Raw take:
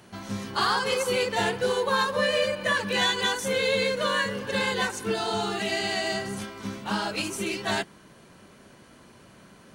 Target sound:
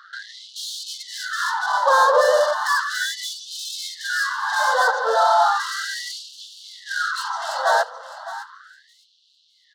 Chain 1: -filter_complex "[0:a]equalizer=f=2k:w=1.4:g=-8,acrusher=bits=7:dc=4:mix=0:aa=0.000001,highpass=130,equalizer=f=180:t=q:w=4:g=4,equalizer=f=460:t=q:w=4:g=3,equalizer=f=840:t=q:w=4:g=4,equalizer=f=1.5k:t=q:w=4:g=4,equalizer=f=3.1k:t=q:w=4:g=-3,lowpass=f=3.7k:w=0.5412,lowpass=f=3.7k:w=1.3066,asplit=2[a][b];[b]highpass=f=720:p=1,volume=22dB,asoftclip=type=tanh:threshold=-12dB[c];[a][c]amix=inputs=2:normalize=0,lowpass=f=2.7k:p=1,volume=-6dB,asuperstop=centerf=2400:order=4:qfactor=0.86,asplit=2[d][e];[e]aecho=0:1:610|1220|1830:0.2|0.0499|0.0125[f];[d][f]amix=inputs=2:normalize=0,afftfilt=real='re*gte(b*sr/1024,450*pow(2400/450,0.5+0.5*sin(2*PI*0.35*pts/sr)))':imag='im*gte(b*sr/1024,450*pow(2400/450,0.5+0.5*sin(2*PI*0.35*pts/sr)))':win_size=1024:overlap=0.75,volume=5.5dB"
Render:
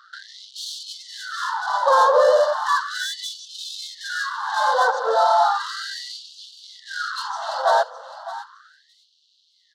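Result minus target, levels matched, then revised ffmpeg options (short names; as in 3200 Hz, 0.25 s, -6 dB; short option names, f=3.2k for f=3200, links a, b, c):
2000 Hz band -4.5 dB
-filter_complex "[0:a]equalizer=f=2k:w=1.4:g=3.5,acrusher=bits=7:dc=4:mix=0:aa=0.000001,highpass=130,equalizer=f=180:t=q:w=4:g=4,equalizer=f=460:t=q:w=4:g=3,equalizer=f=840:t=q:w=4:g=4,equalizer=f=1.5k:t=q:w=4:g=4,equalizer=f=3.1k:t=q:w=4:g=-3,lowpass=f=3.7k:w=0.5412,lowpass=f=3.7k:w=1.3066,asplit=2[a][b];[b]highpass=f=720:p=1,volume=22dB,asoftclip=type=tanh:threshold=-12dB[c];[a][c]amix=inputs=2:normalize=0,lowpass=f=2.7k:p=1,volume=-6dB,asuperstop=centerf=2400:order=4:qfactor=0.86,asplit=2[d][e];[e]aecho=0:1:610|1220|1830:0.2|0.0499|0.0125[f];[d][f]amix=inputs=2:normalize=0,afftfilt=real='re*gte(b*sr/1024,450*pow(2400/450,0.5+0.5*sin(2*PI*0.35*pts/sr)))':imag='im*gte(b*sr/1024,450*pow(2400/450,0.5+0.5*sin(2*PI*0.35*pts/sr)))':win_size=1024:overlap=0.75,volume=5.5dB"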